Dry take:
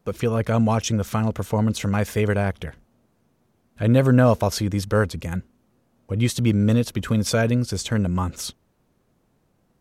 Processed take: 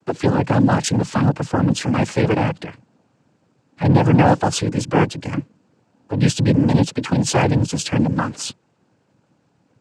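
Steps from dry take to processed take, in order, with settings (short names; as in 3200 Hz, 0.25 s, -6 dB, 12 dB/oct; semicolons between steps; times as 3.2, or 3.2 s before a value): added harmonics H 5 -23 dB, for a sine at -4.5 dBFS; vibrato 1.7 Hz 34 cents; noise vocoder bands 8; gain +2.5 dB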